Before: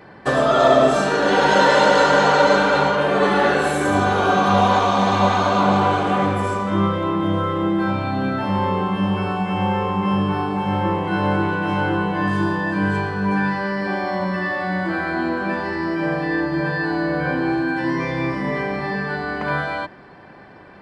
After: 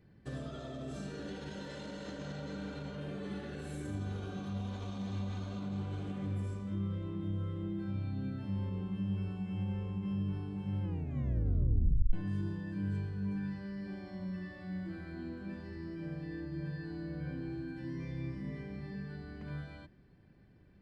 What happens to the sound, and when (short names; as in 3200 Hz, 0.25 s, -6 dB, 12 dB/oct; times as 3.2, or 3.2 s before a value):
1.81–2.3 reverb throw, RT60 2.4 s, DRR -2.5 dB
10.83 tape stop 1.30 s
whole clip: low shelf 360 Hz +3 dB; limiter -10 dBFS; passive tone stack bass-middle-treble 10-0-1; gain -1 dB